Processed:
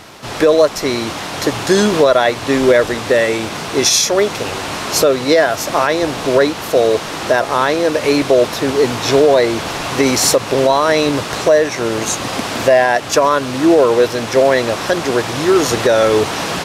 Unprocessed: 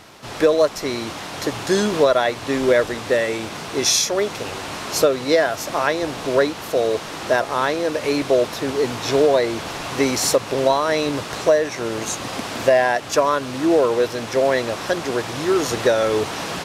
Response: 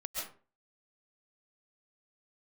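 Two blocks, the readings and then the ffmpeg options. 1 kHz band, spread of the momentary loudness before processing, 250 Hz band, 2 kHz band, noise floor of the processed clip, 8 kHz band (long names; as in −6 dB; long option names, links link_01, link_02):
+6.0 dB, 9 LU, +6.5 dB, +6.0 dB, −26 dBFS, +6.0 dB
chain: -af "alimiter=level_in=8dB:limit=-1dB:release=50:level=0:latency=1,volume=-1dB"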